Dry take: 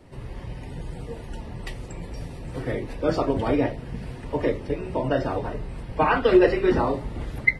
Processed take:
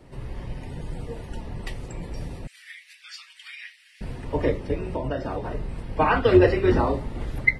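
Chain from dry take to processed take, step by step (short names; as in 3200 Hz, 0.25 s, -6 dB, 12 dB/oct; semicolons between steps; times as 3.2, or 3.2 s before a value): octaver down 2 oct, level -2 dB; 2.47–4.01 steep high-pass 1900 Hz 36 dB/oct; 4.92–5.51 compressor 3:1, threshold -26 dBFS, peak gain reduction 7 dB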